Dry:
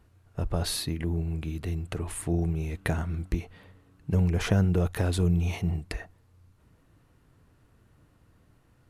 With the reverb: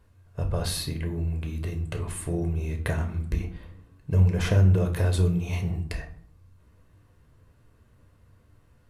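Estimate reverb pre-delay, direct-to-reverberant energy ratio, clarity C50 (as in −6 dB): 10 ms, 4.5 dB, 11.5 dB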